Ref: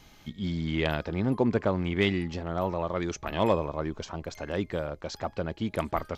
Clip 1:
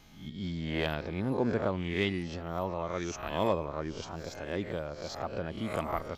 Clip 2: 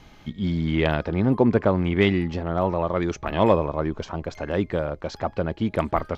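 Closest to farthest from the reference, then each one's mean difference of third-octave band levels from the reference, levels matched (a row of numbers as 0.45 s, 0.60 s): 2, 1; 2.0 dB, 3.5 dB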